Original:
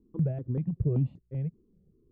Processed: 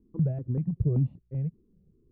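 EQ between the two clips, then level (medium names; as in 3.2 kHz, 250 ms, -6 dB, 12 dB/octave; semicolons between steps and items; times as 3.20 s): low-pass 1 kHz 6 dB/octave; peaking EQ 430 Hz -3 dB 1.8 oct; +2.5 dB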